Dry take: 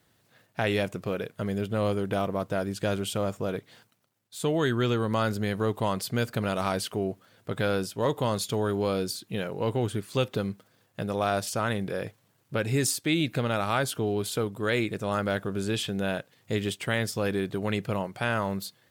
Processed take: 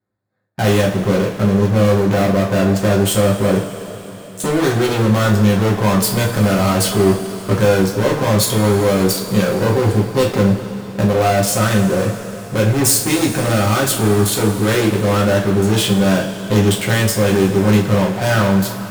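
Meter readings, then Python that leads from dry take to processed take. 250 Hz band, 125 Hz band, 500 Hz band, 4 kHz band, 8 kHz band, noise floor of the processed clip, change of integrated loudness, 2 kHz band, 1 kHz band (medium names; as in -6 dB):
+15.0 dB, +15.5 dB, +12.5 dB, +11.5 dB, +16.0 dB, -32 dBFS, +13.5 dB, +10.5 dB, +11.0 dB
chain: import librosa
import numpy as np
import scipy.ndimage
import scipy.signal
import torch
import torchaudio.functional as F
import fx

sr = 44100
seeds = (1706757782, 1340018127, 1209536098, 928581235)

p1 = fx.wiener(x, sr, points=15)
p2 = fx.leveller(p1, sr, passes=5)
p3 = fx.rider(p2, sr, range_db=10, speed_s=0.5)
p4 = p2 + (p3 * 10.0 ** (1.0 / 20.0))
p5 = fx.high_shelf(p4, sr, hz=8900.0, db=8.5)
p6 = fx.rev_double_slope(p5, sr, seeds[0], early_s=0.35, late_s=4.4, knee_db=-17, drr_db=-3.5)
y = p6 * 10.0 ** (-10.5 / 20.0)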